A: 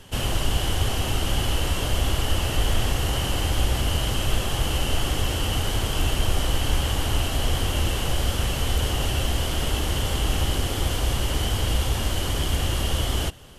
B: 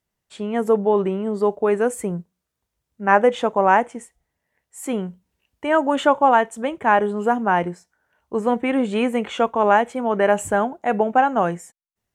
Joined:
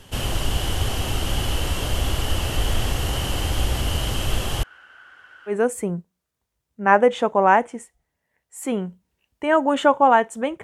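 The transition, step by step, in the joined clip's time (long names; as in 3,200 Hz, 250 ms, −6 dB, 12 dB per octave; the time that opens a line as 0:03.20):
A
0:04.63–0:05.56: resonant band-pass 1,500 Hz, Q 16
0:05.51: continue with B from 0:01.72, crossfade 0.10 s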